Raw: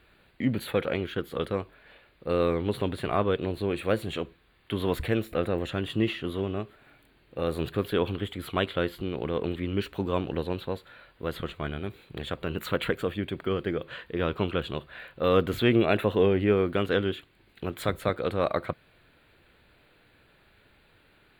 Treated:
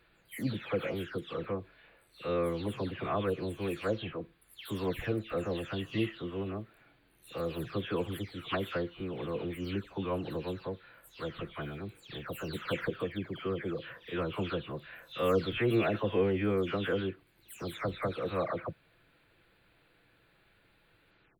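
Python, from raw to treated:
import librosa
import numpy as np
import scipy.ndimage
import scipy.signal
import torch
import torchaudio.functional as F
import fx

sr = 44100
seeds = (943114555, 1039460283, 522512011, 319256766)

y = fx.spec_delay(x, sr, highs='early', ms=282)
y = y * 10.0 ** (-5.0 / 20.0)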